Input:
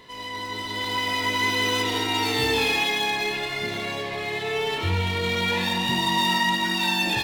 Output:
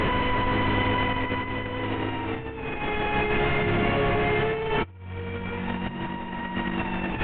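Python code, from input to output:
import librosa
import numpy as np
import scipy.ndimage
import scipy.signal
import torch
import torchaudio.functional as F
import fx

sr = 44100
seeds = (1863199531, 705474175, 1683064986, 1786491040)

y = fx.delta_mod(x, sr, bps=16000, step_db=-22.0)
y = fx.tilt_eq(y, sr, slope=-2.5)
y = fx.over_compress(y, sr, threshold_db=-26.0, ratio=-0.5)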